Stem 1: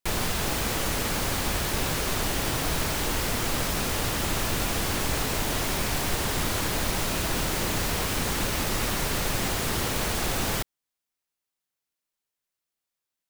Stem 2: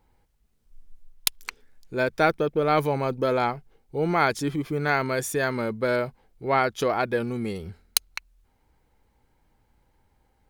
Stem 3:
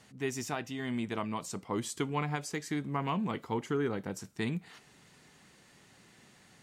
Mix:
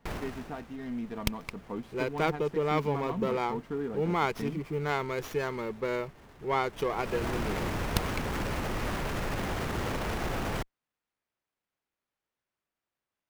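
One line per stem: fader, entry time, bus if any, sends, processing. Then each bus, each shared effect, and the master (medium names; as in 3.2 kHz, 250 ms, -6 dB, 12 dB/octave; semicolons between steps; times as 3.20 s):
+2.5 dB, 0.00 s, no send, median filter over 9 samples; peak limiter -26 dBFS, peak gain reduction 10.5 dB; auto duck -22 dB, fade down 0.70 s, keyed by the third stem
-7.0 dB, 0.00 s, no send, rippled EQ curve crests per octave 0.77, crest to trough 8 dB
-3.0 dB, 0.00 s, no send, low-pass 1 kHz 6 dB/octave; comb 4.3 ms, depth 43%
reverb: none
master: sliding maximum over 5 samples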